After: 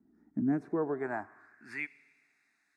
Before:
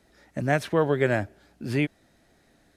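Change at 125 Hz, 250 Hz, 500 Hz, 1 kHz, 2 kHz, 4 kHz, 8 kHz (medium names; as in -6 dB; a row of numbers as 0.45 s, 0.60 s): -15.5 dB, -4.5 dB, -11.5 dB, -10.0 dB, -10.5 dB, under -20 dB, under -20 dB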